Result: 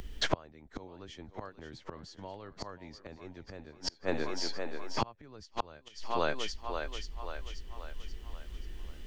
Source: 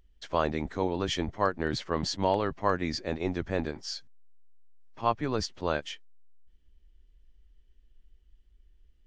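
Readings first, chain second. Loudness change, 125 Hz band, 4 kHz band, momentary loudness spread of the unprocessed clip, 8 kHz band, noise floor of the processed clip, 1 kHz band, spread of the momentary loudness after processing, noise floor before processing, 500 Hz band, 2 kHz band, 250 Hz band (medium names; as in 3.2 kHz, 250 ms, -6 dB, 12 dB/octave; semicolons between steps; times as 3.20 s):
-9.0 dB, -8.5 dB, -2.0 dB, 7 LU, -3.0 dB, -59 dBFS, -7.0 dB, 15 LU, -63 dBFS, -7.5 dB, -3.5 dB, -9.5 dB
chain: thinning echo 533 ms, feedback 38%, high-pass 280 Hz, level -14 dB; inverted gate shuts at -27 dBFS, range -39 dB; three bands compressed up and down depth 40%; trim +16.5 dB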